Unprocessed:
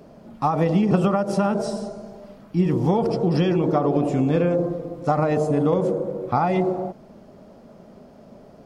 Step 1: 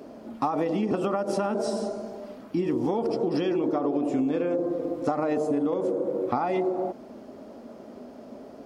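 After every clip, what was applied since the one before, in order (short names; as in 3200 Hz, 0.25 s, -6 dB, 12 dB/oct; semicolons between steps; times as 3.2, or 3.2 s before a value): resonant low shelf 210 Hz -6 dB, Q 3; compressor, threshold -25 dBFS, peak gain reduction 11.5 dB; HPF 42 Hz; gain +2 dB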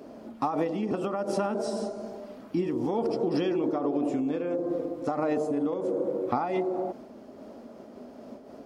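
noise-modulated level, depth 55%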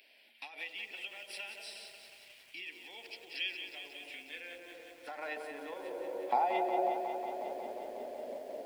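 high-pass sweep 2400 Hz -> 550 Hz, 3.85–7.52; fixed phaser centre 2900 Hz, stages 4; lo-fi delay 0.181 s, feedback 80%, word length 10-bit, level -8 dB; gain +1 dB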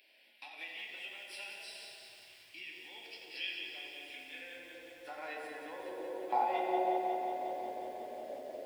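reverb RT60 1.8 s, pre-delay 4 ms, DRR -0.5 dB; gain -4.5 dB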